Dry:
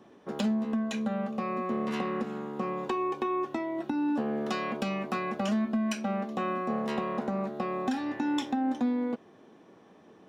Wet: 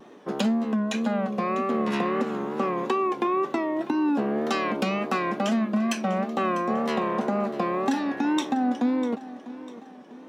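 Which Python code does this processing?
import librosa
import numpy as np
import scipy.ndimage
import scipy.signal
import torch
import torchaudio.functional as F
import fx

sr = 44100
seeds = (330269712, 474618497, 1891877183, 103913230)

p1 = scipy.signal.sosfilt(scipy.signal.butter(2, 180.0, 'highpass', fs=sr, output='sos'), x)
p2 = fx.rider(p1, sr, range_db=4, speed_s=0.5)
p3 = p1 + (p2 * librosa.db_to_amplitude(0.0))
p4 = fx.wow_flutter(p3, sr, seeds[0], rate_hz=2.1, depth_cents=87.0)
y = fx.echo_feedback(p4, sr, ms=648, feedback_pct=44, wet_db=-16)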